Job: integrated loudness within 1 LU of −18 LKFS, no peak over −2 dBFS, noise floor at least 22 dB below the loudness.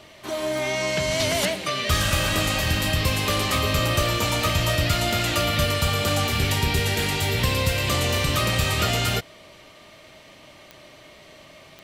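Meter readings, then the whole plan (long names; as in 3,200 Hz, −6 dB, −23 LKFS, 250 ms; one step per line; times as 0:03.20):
number of clicks 6; integrated loudness −22.5 LKFS; sample peak −8.5 dBFS; target loudness −18.0 LKFS
→ click removal
level +4.5 dB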